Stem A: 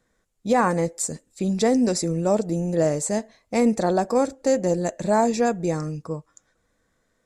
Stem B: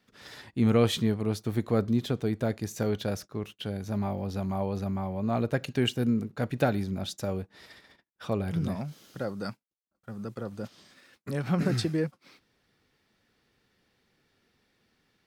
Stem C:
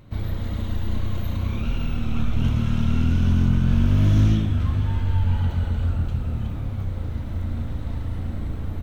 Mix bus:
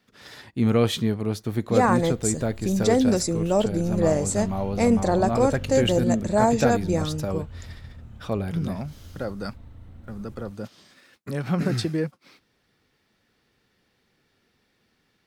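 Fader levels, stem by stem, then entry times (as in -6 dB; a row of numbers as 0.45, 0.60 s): -0.5, +2.5, -17.0 dB; 1.25, 0.00, 1.70 s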